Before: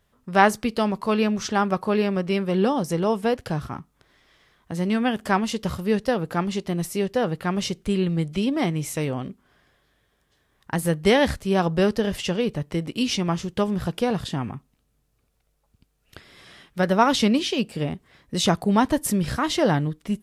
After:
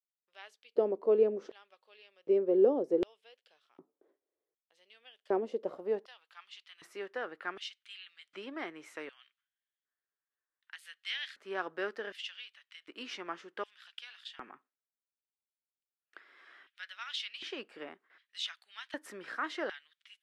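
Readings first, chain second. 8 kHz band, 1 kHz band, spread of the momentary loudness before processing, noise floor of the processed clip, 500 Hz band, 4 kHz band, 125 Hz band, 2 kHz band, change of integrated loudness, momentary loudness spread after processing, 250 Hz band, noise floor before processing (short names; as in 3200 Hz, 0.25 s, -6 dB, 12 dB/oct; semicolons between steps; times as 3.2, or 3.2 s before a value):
-24.5 dB, -19.5 dB, 10 LU, under -85 dBFS, -9.0 dB, -12.5 dB, under -30 dB, -13.0 dB, -11.5 dB, 23 LU, -19.5 dB, -69 dBFS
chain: band-pass sweep 480 Hz -> 1500 Hz, 5.38–6.79; dynamic EQ 1000 Hz, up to -4 dB, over -44 dBFS, Q 1.4; gate with hold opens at -55 dBFS; LFO high-pass square 0.66 Hz 330–3200 Hz; gain -3.5 dB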